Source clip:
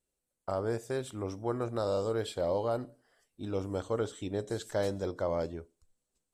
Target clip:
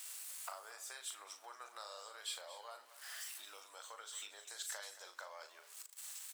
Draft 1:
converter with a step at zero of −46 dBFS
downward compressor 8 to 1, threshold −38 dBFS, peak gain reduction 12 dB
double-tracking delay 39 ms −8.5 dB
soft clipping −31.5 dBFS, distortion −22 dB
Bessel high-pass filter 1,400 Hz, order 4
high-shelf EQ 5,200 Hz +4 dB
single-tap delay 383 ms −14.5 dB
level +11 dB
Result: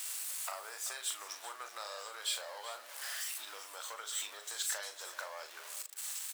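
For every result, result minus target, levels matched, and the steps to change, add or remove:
echo 155 ms late; downward compressor: peak gain reduction −7 dB; converter with a step at zero: distortion +8 dB
change: single-tap delay 228 ms −14.5 dB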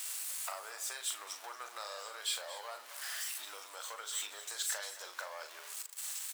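downward compressor: peak gain reduction −7 dB; converter with a step at zero: distortion +8 dB
change: downward compressor 8 to 1, threshold −46 dBFS, peak gain reduction 19 dB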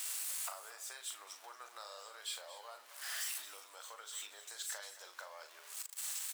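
converter with a step at zero: distortion +8 dB
change: converter with a step at zero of −54.5 dBFS

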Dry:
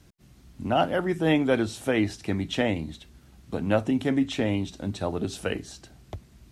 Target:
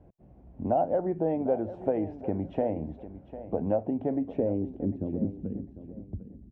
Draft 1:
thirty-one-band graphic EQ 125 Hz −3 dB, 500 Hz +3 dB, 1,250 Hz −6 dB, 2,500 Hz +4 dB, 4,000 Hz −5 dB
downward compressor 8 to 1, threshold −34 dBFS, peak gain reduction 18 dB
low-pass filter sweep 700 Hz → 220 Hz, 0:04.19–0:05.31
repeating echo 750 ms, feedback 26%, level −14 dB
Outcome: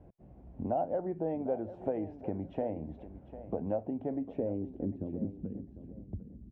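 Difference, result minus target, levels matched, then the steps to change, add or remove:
downward compressor: peak gain reduction +6 dB
change: downward compressor 8 to 1, threshold −27 dBFS, peak gain reduction 12 dB

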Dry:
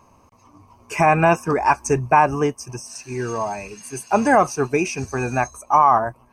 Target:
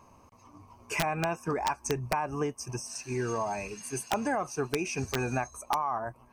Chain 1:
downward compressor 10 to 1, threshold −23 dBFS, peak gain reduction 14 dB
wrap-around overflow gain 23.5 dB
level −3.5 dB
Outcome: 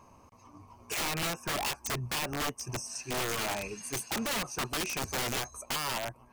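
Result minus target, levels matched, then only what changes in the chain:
wrap-around overflow: distortion +24 dB
change: wrap-around overflow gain 15 dB

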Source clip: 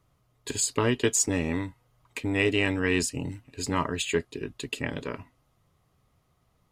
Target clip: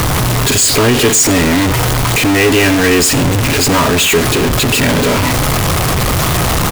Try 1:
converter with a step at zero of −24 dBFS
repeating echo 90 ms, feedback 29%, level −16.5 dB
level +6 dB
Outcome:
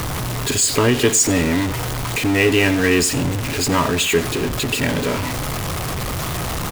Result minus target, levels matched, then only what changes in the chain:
converter with a step at zero: distortion −6 dB
change: converter with a step at zero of −13 dBFS

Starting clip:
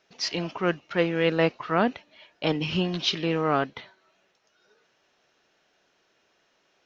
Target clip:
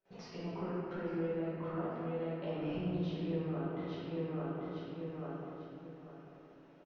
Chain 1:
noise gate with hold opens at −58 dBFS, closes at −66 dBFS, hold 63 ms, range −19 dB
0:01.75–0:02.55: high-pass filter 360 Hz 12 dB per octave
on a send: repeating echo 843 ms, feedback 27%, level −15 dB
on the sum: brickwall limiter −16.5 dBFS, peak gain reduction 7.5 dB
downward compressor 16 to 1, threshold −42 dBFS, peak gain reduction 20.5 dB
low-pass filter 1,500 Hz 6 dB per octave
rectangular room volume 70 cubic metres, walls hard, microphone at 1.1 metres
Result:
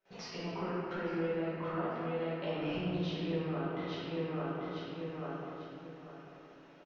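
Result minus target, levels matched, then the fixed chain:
2,000 Hz band +5.5 dB
noise gate with hold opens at −58 dBFS, closes at −66 dBFS, hold 63 ms, range −19 dB
0:01.75–0:02.55: high-pass filter 360 Hz 12 dB per octave
on a send: repeating echo 843 ms, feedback 27%, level −15 dB
on the sum: brickwall limiter −16.5 dBFS, peak gain reduction 7.5 dB
downward compressor 16 to 1, threshold −42 dBFS, peak gain reduction 20.5 dB
low-pass filter 520 Hz 6 dB per octave
rectangular room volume 70 cubic metres, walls hard, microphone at 1.1 metres

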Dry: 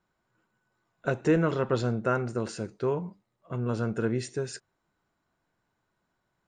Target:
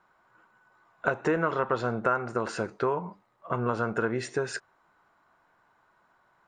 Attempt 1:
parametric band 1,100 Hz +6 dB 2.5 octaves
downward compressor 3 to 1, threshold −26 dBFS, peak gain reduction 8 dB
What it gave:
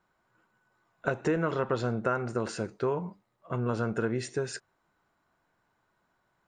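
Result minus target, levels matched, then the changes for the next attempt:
1,000 Hz band −3.5 dB
change: parametric band 1,100 Hz +16.5 dB 2.5 octaves

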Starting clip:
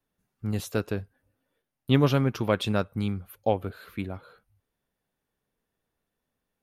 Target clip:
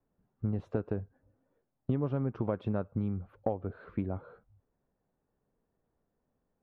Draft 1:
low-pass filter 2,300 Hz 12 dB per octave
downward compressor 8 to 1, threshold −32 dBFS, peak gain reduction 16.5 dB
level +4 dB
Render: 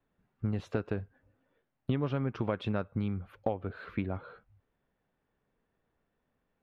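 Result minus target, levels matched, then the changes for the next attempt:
2,000 Hz band +8.5 dB
change: low-pass filter 950 Hz 12 dB per octave

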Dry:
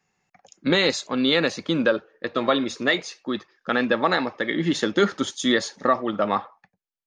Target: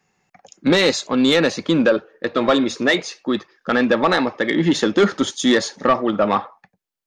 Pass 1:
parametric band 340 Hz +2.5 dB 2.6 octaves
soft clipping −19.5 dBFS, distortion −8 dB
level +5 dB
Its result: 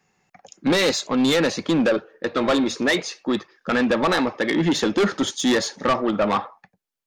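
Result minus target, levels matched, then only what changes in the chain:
soft clipping: distortion +7 dB
change: soft clipping −12 dBFS, distortion −16 dB

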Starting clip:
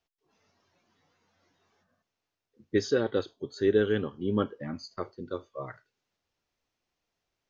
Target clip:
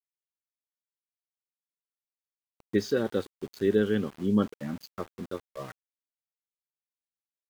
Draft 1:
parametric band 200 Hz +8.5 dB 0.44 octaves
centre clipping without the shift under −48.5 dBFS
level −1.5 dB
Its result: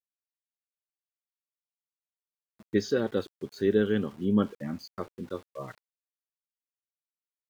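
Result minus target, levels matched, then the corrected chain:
centre clipping without the shift: distortion −8 dB
parametric band 200 Hz +8.5 dB 0.44 octaves
centre clipping without the shift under −41.5 dBFS
level −1.5 dB

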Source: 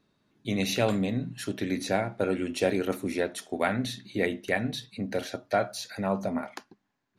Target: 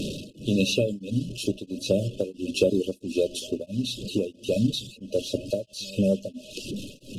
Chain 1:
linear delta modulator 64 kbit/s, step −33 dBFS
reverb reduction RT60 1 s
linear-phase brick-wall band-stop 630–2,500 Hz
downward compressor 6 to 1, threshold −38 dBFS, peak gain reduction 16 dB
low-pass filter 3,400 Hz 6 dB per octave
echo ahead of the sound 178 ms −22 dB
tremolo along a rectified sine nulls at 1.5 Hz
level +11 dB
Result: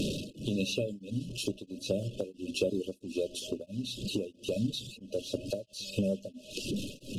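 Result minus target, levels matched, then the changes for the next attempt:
downward compressor: peak gain reduction +8.5 dB
change: downward compressor 6 to 1, threshold −27.5 dBFS, peak gain reduction 7.5 dB

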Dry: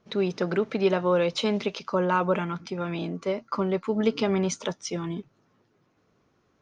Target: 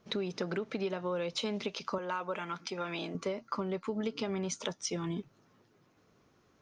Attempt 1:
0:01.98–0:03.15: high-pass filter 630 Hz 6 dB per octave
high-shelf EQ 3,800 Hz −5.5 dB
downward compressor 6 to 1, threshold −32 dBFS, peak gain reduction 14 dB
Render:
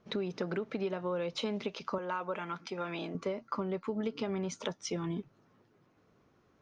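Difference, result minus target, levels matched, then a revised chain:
8,000 Hz band −5.0 dB
0:01.98–0:03.15: high-pass filter 630 Hz 6 dB per octave
high-shelf EQ 3,800 Hz +4.5 dB
downward compressor 6 to 1, threshold −32 dBFS, peak gain reduction 14 dB

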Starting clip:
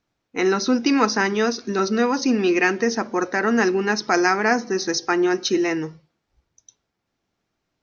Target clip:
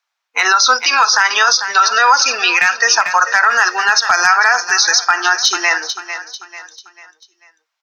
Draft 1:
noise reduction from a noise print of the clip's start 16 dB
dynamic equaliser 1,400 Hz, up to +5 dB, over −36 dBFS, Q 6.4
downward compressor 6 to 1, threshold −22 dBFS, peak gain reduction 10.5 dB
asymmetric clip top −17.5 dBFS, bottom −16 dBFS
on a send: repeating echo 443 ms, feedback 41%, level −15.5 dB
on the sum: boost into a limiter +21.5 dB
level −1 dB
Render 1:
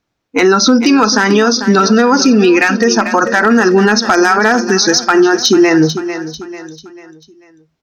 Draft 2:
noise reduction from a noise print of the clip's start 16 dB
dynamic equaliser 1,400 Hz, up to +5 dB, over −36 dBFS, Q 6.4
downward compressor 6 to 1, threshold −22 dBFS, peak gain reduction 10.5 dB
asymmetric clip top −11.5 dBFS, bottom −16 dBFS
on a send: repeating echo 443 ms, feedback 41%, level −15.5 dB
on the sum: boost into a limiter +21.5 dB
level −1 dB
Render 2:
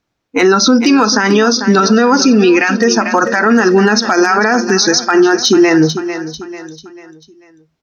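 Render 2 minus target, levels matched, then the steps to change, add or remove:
1,000 Hz band −3.0 dB
add after dynamic equaliser: high-pass filter 870 Hz 24 dB per octave

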